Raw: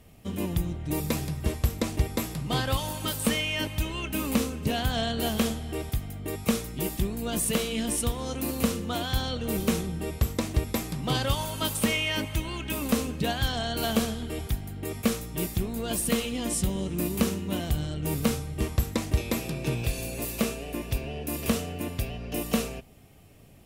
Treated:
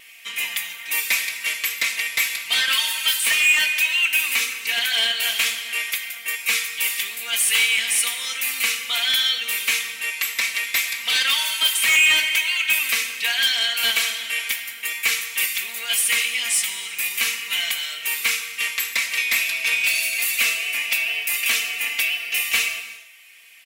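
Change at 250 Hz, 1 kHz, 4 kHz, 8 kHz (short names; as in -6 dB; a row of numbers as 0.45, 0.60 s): under -20 dB, -0.5 dB, +14.0 dB, +11.0 dB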